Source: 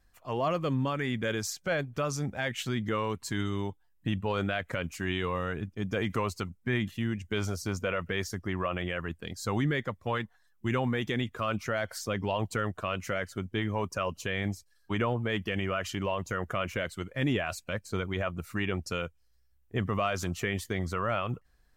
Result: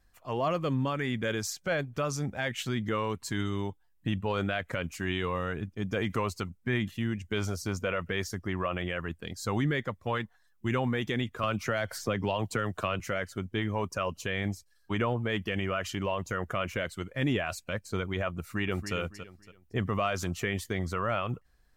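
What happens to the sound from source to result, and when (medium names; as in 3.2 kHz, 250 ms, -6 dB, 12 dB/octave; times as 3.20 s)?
11.43–13.00 s: three bands compressed up and down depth 100%
18.39–18.95 s: echo throw 280 ms, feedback 30%, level -9.5 dB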